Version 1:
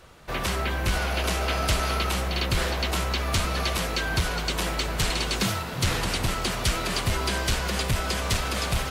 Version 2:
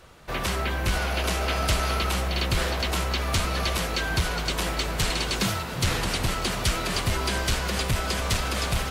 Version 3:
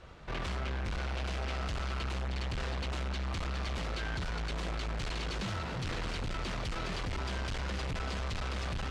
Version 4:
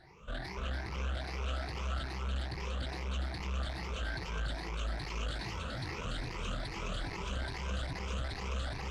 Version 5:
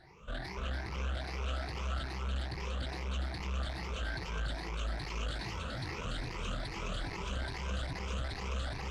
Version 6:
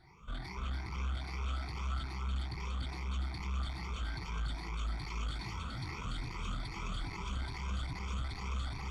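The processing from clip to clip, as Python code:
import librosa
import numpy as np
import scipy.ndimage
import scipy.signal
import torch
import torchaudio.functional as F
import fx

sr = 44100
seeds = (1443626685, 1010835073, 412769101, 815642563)

y1 = x + 10.0 ** (-16.0 / 20.0) * np.pad(x, (int(1115 * sr / 1000.0), 0))[:len(x)]
y2 = fx.low_shelf(y1, sr, hz=93.0, db=6.5)
y2 = fx.tube_stage(y2, sr, drive_db=33.0, bias=0.5)
y2 = fx.air_absorb(y2, sr, metres=110.0)
y3 = fx.spec_ripple(y2, sr, per_octave=0.79, drift_hz=2.4, depth_db=20)
y3 = y3 + 10.0 ** (-4.5 / 20.0) * np.pad(y3, (int(289 * sr / 1000.0), 0))[:len(y3)]
y3 = y3 * librosa.db_to_amplitude(-8.0)
y4 = y3
y5 = y4 + 0.69 * np.pad(y4, (int(0.9 * sr / 1000.0), 0))[:len(y4)]
y5 = y5 * librosa.db_to_amplitude(-4.5)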